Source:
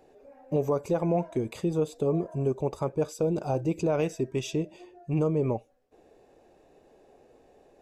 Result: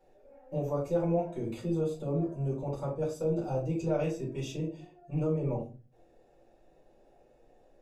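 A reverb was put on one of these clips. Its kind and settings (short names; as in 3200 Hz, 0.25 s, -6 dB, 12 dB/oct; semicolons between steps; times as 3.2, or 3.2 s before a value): shoebox room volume 150 m³, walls furnished, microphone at 4.5 m; gain -15 dB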